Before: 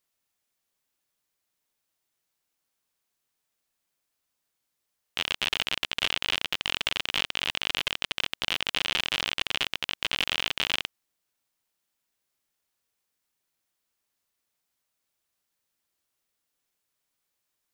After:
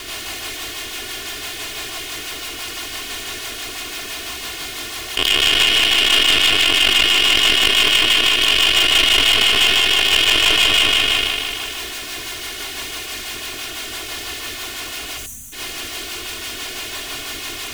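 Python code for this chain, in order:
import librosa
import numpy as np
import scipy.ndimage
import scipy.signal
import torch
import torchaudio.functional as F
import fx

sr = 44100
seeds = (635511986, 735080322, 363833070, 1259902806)

p1 = fx.bin_compress(x, sr, power=0.6)
p2 = p1 + 0.87 * np.pad(p1, (int(2.8 * sr / 1000.0), 0))[:len(p1)]
p3 = fx.echo_feedback(p2, sr, ms=150, feedback_pct=55, wet_db=-7)
p4 = fx.power_curve(p3, sr, exponent=0.7)
p5 = fx.spec_box(p4, sr, start_s=15.18, length_s=0.35, low_hz=270.0, high_hz=5800.0, gain_db=-23)
p6 = p5 + 10.0 ** (-5.5 / 20.0) * np.pad(p5, (int(79 * sr / 1000.0), 0))[:len(p5)]
p7 = fx.level_steps(p6, sr, step_db=15)
p8 = p6 + (p7 * 10.0 ** (3.0 / 20.0))
p9 = fx.rotary(p8, sr, hz=6.0)
p10 = 10.0 ** (-16.5 / 20.0) * np.tanh(p9 / 10.0 ** (-16.5 / 20.0))
p11 = fx.sustainer(p10, sr, db_per_s=27.0)
y = p11 * 10.0 ** (8.0 / 20.0)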